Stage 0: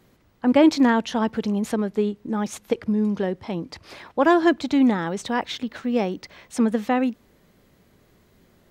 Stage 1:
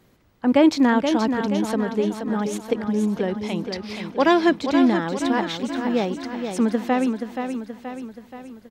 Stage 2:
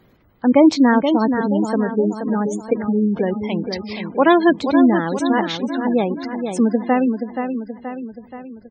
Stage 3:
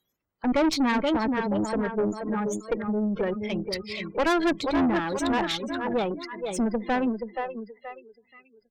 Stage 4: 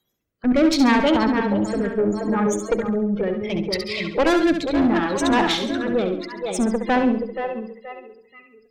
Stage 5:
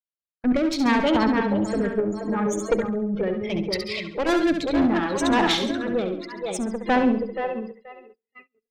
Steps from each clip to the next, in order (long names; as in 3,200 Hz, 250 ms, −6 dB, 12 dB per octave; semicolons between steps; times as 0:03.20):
gain on a spectral selection 0:03.28–0:04.46, 1,900–6,200 Hz +7 dB; on a send: repeating echo 477 ms, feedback 53%, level −7 dB
gate on every frequency bin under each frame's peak −25 dB strong; level +4 dB
noise reduction from a noise print of the clip's start 23 dB; low-shelf EQ 400 Hz −6 dB; tube saturation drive 19 dB, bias 0.4
rotating-speaker cabinet horn 0.7 Hz, later 7 Hz, at 0:07.11; on a send: flutter between parallel walls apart 11.7 metres, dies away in 0.54 s; on the sum: level +7 dB
sample-and-hold tremolo 3.5 Hz; noise gate −46 dBFS, range −32 dB